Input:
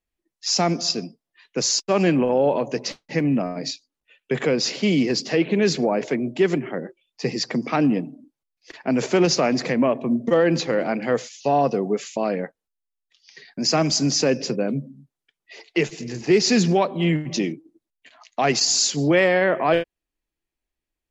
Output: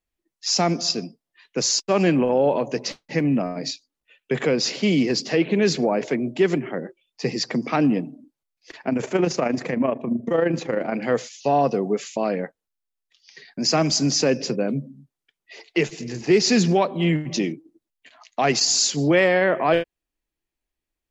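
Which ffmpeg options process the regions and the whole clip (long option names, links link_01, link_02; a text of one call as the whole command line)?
ffmpeg -i in.wav -filter_complex "[0:a]asettb=1/sr,asplit=3[link_01][link_02][link_03];[link_01]atrim=end=8.894[link_04];[link_02]atrim=start=8.89:end=10.94,asetpts=PTS-STARTPTS,afade=type=in:duration=0.004:curve=qsin,afade=type=out:start_time=2.046:duration=0.004:curve=qsin,equalizer=frequency=4600:width_type=o:width=0.96:gain=-9,tremolo=f=26:d=0.571[link_05];[link_03]atrim=start=10.936[link_06];[link_04][link_05]acrossfade=duration=0.004:curve1=hsin:curve2=qsin[link_07];[link_07][link_06]acrossfade=duration=0.004:curve1=qsin:curve2=hsin" out.wav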